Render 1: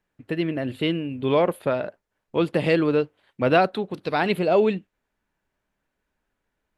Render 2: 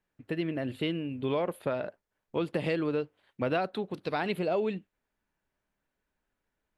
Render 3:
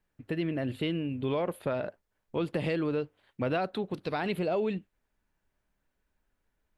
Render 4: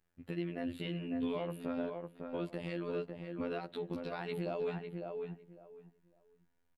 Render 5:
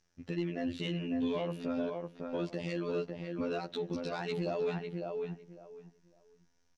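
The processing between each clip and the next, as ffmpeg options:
-af "acompressor=threshold=-22dB:ratio=3,volume=-5dB"
-filter_complex "[0:a]lowshelf=f=86:g=9.5,asplit=2[a][b];[b]alimiter=level_in=2dB:limit=-24dB:level=0:latency=1:release=26,volume=-2dB,volume=-1dB[c];[a][c]amix=inputs=2:normalize=0,volume=-4.5dB"
-filter_complex "[0:a]afftfilt=real='hypot(re,im)*cos(PI*b)':imag='0':win_size=2048:overlap=0.75,alimiter=level_in=1dB:limit=-24dB:level=0:latency=1:release=438,volume=-1dB,asplit=2[a][b];[b]adelay=553,lowpass=f=1.6k:p=1,volume=-4dB,asplit=2[c][d];[d]adelay=553,lowpass=f=1.6k:p=1,volume=0.21,asplit=2[e][f];[f]adelay=553,lowpass=f=1.6k:p=1,volume=0.21[g];[a][c][e][g]amix=inputs=4:normalize=0"
-af "lowpass=f=5.8k:t=q:w=6.6,asoftclip=type=tanh:threshold=-27dB,volume=4dB"

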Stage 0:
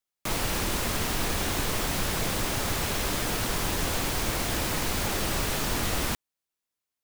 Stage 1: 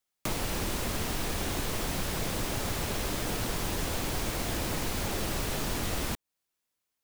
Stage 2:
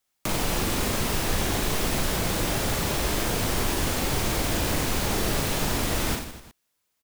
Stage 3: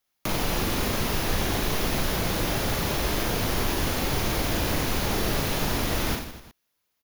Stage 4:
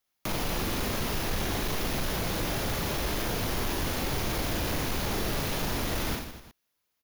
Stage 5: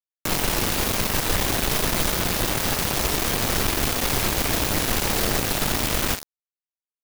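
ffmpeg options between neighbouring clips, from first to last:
-filter_complex "[0:a]acrossover=split=850|1700[a][b][c];[a]acompressor=threshold=-34dB:ratio=4[d];[b]acompressor=threshold=-51dB:ratio=4[e];[c]acompressor=threshold=-40dB:ratio=4[f];[d][e][f]amix=inputs=3:normalize=0,volume=3.5dB"
-filter_complex "[0:a]asplit=2[a][b];[b]alimiter=level_in=2dB:limit=-24dB:level=0:latency=1,volume=-2dB,volume=-0.5dB[c];[a][c]amix=inputs=2:normalize=0,aecho=1:1:40|92|159.6|247.5|361.7:0.631|0.398|0.251|0.158|0.1"
-af "equalizer=f=8.1k:w=4.4:g=-13"
-af "asoftclip=type=tanh:threshold=-19.5dB,volume=-2.5dB"
-filter_complex "[0:a]asplit=2[a][b];[b]alimiter=level_in=5.5dB:limit=-24dB:level=0:latency=1:release=52,volume=-5.5dB,volume=0dB[c];[a][c]amix=inputs=2:normalize=0,acrusher=bits=3:mix=0:aa=0.000001,volume=1.5dB"

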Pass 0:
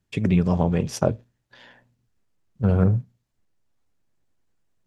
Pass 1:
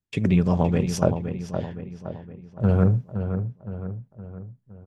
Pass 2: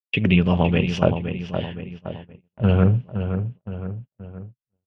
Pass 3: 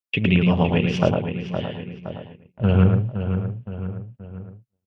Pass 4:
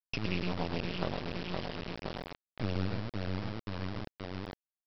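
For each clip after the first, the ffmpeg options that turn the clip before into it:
-filter_complex "[0:a]agate=range=-14dB:threshold=-50dB:ratio=16:detection=peak,asplit=2[a][b];[b]adelay=516,lowpass=f=2.8k:p=1,volume=-8dB,asplit=2[c][d];[d]adelay=516,lowpass=f=2.8k:p=1,volume=0.51,asplit=2[e][f];[f]adelay=516,lowpass=f=2.8k:p=1,volume=0.51,asplit=2[g][h];[h]adelay=516,lowpass=f=2.8k:p=1,volume=0.51,asplit=2[i][j];[j]adelay=516,lowpass=f=2.8k:p=1,volume=0.51,asplit=2[k][l];[l]adelay=516,lowpass=f=2.8k:p=1,volume=0.51[m];[c][e][g][i][k][m]amix=inputs=6:normalize=0[n];[a][n]amix=inputs=2:normalize=0"
-af "agate=range=-40dB:threshold=-38dB:ratio=16:detection=peak,lowpass=f=2.9k:t=q:w=6.8,volume=2dB"
-af "aecho=1:1:109:0.531,volume=-1dB"
-af "acompressor=threshold=-32dB:ratio=2.5,aresample=11025,acrusher=bits=3:dc=4:mix=0:aa=0.000001,aresample=44100,volume=-2dB"

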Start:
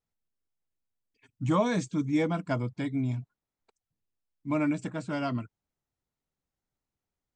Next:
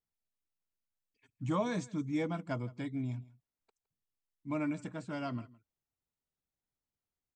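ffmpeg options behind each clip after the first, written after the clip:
-af "aecho=1:1:163:0.0841,volume=-7dB"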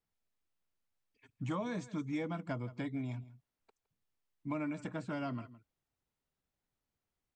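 -filter_complex "[0:a]highshelf=f=4.8k:g=-10,acrossover=split=470|1100[a][b][c];[a]acompressor=threshold=-45dB:ratio=4[d];[b]acompressor=threshold=-51dB:ratio=4[e];[c]acompressor=threshold=-53dB:ratio=4[f];[d][e][f]amix=inputs=3:normalize=0,volume=6dB"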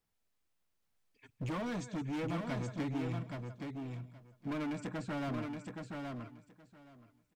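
-af "asoftclip=type=hard:threshold=-39dB,aecho=1:1:822|1644|2466:0.596|0.0893|0.0134,volume=4dB"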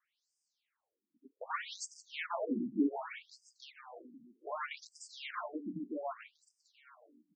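-af "highpass=170,afftfilt=real='re*between(b*sr/1024,240*pow(6800/240,0.5+0.5*sin(2*PI*0.65*pts/sr))/1.41,240*pow(6800/240,0.5+0.5*sin(2*PI*0.65*pts/sr))*1.41)':imag='im*between(b*sr/1024,240*pow(6800/240,0.5+0.5*sin(2*PI*0.65*pts/sr))/1.41,240*pow(6800/240,0.5+0.5*sin(2*PI*0.65*pts/sr))*1.41)':win_size=1024:overlap=0.75,volume=9.5dB"

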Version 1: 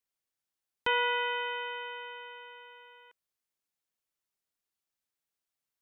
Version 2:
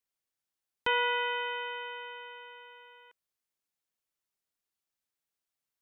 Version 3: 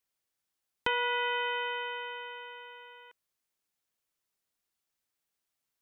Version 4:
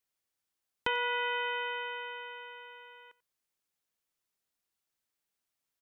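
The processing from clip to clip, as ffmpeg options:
-af anull
-af "acompressor=threshold=-30dB:ratio=6,volume=3.5dB"
-filter_complex "[0:a]asplit=2[a][b];[b]adelay=90,highpass=300,lowpass=3.4k,asoftclip=type=hard:threshold=-22dB,volume=-20dB[c];[a][c]amix=inputs=2:normalize=0,volume=-1.5dB"

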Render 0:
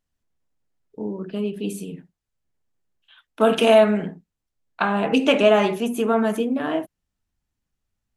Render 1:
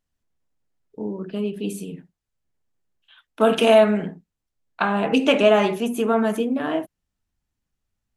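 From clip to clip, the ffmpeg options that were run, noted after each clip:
-af anull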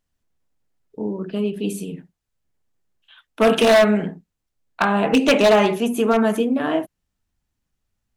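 -af "aeval=exprs='0.299*(abs(mod(val(0)/0.299+3,4)-2)-1)':c=same,volume=3dB"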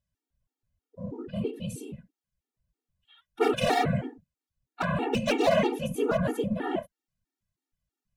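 -af "afftfilt=real='hypot(re,im)*cos(2*PI*random(0))':imag='hypot(re,im)*sin(2*PI*random(1))':win_size=512:overlap=0.75,afftfilt=real='re*gt(sin(2*PI*3.1*pts/sr)*(1-2*mod(floor(b*sr/1024/240),2)),0)':imag='im*gt(sin(2*PI*3.1*pts/sr)*(1-2*mod(floor(b*sr/1024/240),2)),0)':win_size=1024:overlap=0.75"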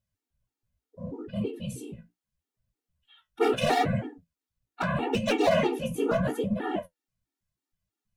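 -af "flanger=delay=9.2:depth=8.7:regen=45:speed=0.75:shape=sinusoidal,volume=4dB"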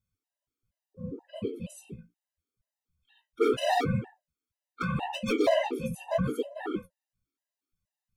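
-af "afftfilt=real='re*gt(sin(2*PI*2.1*pts/sr)*(1-2*mod(floor(b*sr/1024/520),2)),0)':imag='im*gt(sin(2*PI*2.1*pts/sr)*(1-2*mod(floor(b*sr/1024/520),2)),0)':win_size=1024:overlap=0.75"

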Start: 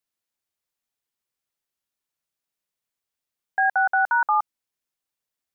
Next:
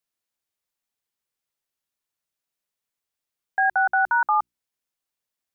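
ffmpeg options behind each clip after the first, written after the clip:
-af "bandreject=f=60:t=h:w=6,bandreject=f=120:t=h:w=6,bandreject=f=180:t=h:w=6,bandreject=f=240:t=h:w=6,bandreject=f=300:t=h:w=6,bandreject=f=360:t=h:w=6"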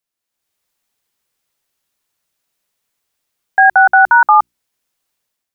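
-af "dynaudnorm=f=160:g=5:m=10.5dB,volume=2.5dB"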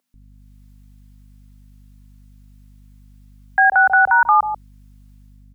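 -filter_complex "[0:a]aeval=exprs='val(0)+0.00316*(sin(2*PI*50*n/s)+sin(2*PI*2*50*n/s)/2+sin(2*PI*3*50*n/s)/3+sin(2*PI*4*50*n/s)/4+sin(2*PI*5*50*n/s)/5)':c=same,acrossover=split=540[a][b];[a]adelay=140[c];[c][b]amix=inputs=2:normalize=0,alimiter=level_in=9.5dB:limit=-1dB:release=50:level=0:latency=1,volume=-5dB"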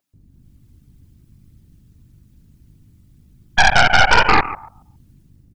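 -af "aecho=1:1:137|274|411:0.316|0.0569|0.0102,afftfilt=real='hypot(re,im)*cos(2*PI*random(0))':imag='hypot(re,im)*sin(2*PI*random(1))':win_size=512:overlap=0.75,aeval=exprs='0.473*(cos(1*acos(clip(val(0)/0.473,-1,1)))-cos(1*PI/2))+0.15*(cos(6*acos(clip(val(0)/0.473,-1,1)))-cos(6*PI/2))':c=same,volume=4dB"

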